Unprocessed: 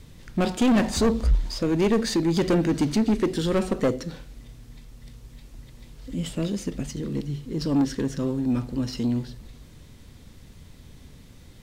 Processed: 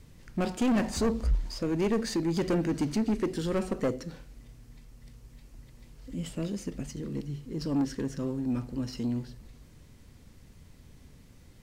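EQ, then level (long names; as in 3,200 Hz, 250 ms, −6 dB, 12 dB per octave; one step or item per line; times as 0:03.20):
parametric band 3,600 Hz −5.5 dB 0.36 octaves
−6.0 dB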